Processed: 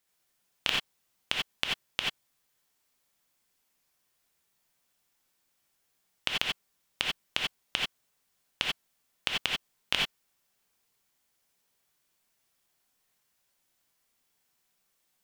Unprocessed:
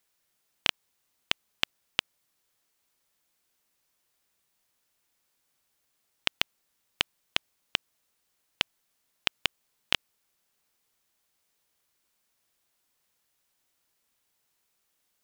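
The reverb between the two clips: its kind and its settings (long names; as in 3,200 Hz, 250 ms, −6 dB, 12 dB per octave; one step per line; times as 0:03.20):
reverb whose tail is shaped and stops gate 110 ms rising, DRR −2 dB
level −3.5 dB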